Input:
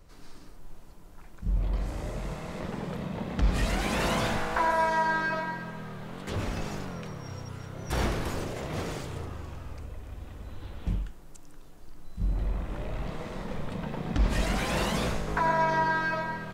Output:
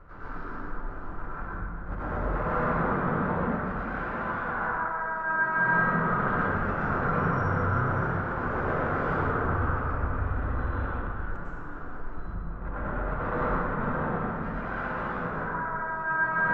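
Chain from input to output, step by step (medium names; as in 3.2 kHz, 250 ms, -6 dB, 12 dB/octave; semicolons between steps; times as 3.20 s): hum notches 60/120/180 Hz; compressor with a negative ratio -38 dBFS, ratio -1; saturation -30.5 dBFS, distortion -15 dB; resonant low-pass 1.4 kHz, resonance Q 4.9; plate-style reverb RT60 2.3 s, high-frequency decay 0.55×, pre-delay 90 ms, DRR -9.5 dB; trim -2.5 dB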